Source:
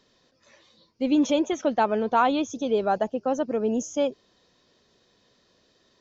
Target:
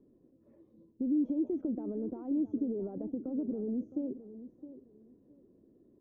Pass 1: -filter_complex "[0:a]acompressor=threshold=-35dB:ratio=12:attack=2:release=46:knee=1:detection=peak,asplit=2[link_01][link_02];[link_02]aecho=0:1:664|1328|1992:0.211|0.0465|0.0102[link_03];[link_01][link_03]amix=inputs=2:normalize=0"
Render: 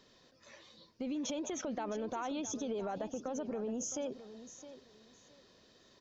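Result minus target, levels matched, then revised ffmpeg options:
250 Hz band −3.5 dB
-filter_complex "[0:a]acompressor=threshold=-35dB:ratio=12:attack=2:release=46:knee=1:detection=peak,lowpass=frequency=320:width_type=q:width=2.9,asplit=2[link_01][link_02];[link_02]aecho=0:1:664|1328|1992:0.211|0.0465|0.0102[link_03];[link_01][link_03]amix=inputs=2:normalize=0"

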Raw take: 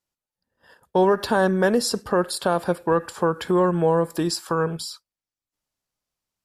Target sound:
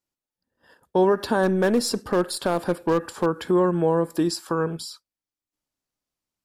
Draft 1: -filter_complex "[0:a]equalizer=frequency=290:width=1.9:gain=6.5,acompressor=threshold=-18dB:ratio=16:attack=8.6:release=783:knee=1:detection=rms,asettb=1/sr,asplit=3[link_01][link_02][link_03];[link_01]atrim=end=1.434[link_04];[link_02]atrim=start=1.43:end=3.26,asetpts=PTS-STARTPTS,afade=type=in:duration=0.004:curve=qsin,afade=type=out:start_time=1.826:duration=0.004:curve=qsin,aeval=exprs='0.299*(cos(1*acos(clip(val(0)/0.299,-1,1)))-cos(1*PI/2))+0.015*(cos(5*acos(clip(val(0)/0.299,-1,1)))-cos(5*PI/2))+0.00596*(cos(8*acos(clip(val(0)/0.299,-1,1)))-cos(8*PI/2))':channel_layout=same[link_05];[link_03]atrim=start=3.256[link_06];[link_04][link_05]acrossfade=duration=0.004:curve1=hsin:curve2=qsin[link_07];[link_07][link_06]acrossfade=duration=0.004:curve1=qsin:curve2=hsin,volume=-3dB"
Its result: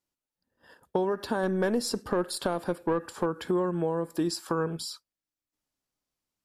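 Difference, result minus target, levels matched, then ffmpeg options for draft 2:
downward compressor: peak gain reduction +10 dB
-filter_complex "[0:a]equalizer=frequency=290:width=1.9:gain=6.5,asettb=1/sr,asplit=3[link_01][link_02][link_03];[link_01]atrim=end=1.434[link_04];[link_02]atrim=start=1.43:end=3.26,asetpts=PTS-STARTPTS,afade=type=in:duration=0.004:curve=qsin,afade=type=out:start_time=1.826:duration=0.004:curve=qsin,aeval=exprs='0.299*(cos(1*acos(clip(val(0)/0.299,-1,1)))-cos(1*PI/2))+0.015*(cos(5*acos(clip(val(0)/0.299,-1,1)))-cos(5*PI/2))+0.00596*(cos(8*acos(clip(val(0)/0.299,-1,1)))-cos(8*PI/2))':channel_layout=same[link_05];[link_03]atrim=start=3.256[link_06];[link_04][link_05]acrossfade=duration=0.004:curve1=hsin:curve2=qsin[link_07];[link_07][link_06]acrossfade=duration=0.004:curve1=qsin:curve2=hsin,volume=-3dB"

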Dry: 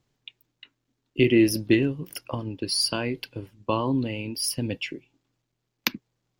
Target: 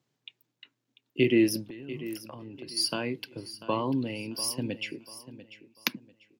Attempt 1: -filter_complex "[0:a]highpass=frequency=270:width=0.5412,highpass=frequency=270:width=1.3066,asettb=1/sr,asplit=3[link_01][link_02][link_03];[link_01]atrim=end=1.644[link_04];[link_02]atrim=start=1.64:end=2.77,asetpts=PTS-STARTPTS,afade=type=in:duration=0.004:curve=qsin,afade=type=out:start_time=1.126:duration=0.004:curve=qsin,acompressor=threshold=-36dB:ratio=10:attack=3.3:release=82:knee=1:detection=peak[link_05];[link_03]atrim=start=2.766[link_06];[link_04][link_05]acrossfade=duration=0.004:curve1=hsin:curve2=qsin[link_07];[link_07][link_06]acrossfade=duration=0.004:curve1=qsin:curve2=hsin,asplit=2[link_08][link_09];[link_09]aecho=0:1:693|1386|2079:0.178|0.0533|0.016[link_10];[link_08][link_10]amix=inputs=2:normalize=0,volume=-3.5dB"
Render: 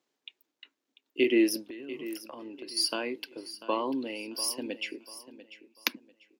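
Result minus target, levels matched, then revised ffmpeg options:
125 Hz band −19.5 dB
-filter_complex "[0:a]highpass=frequency=120:width=0.5412,highpass=frequency=120:width=1.3066,asettb=1/sr,asplit=3[link_01][link_02][link_03];[link_01]atrim=end=1.644[link_04];[link_02]atrim=start=1.64:end=2.77,asetpts=PTS-STARTPTS,afade=type=in:duration=0.004:curve=qsin,afade=type=out:start_time=1.126:duration=0.004:curve=qsin,acompressor=threshold=-36dB:ratio=10:attack=3.3:release=82:knee=1:detection=peak[link_05];[link_03]atrim=start=2.766[link_06];[link_04][link_05]acrossfade=duration=0.004:curve1=hsin:curve2=qsin[link_07];[link_07][link_06]acrossfade=duration=0.004:curve1=qsin:curve2=hsin,asplit=2[link_08][link_09];[link_09]aecho=0:1:693|1386|2079:0.178|0.0533|0.016[link_10];[link_08][link_10]amix=inputs=2:normalize=0,volume=-3.5dB"

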